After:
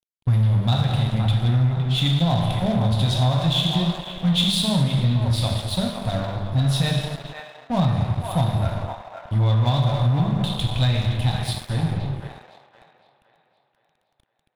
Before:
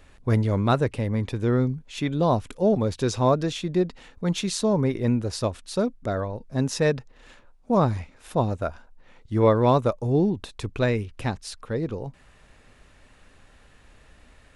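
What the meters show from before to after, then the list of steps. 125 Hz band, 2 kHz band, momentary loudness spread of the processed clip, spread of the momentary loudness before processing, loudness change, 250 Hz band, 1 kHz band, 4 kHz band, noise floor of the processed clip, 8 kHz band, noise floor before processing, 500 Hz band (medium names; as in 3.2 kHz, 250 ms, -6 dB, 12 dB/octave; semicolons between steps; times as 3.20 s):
+7.5 dB, +1.0 dB, 8 LU, 9 LU, +3.5 dB, +0.5 dB, -0.5 dB, +12.5 dB, -71 dBFS, +0.5 dB, -55 dBFS, -6.5 dB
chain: FFT filter 150 Hz 0 dB, 420 Hz -26 dB, 750 Hz -6 dB, 1.2 kHz -16 dB, 2.4 kHz -10 dB, 3.5 kHz -1 dB, 6.3 kHz -19 dB, 11 kHz -1 dB; gated-style reverb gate 470 ms falling, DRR -0.5 dB; compression 5:1, threshold -25 dBFS, peak gain reduction 8 dB; crossover distortion -43 dBFS; dynamic bell 3.6 kHz, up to +8 dB, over -58 dBFS, Q 2.5; feedback echo behind a band-pass 514 ms, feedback 44%, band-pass 1.2 kHz, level -5.5 dB; waveshaping leveller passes 1; trim +7 dB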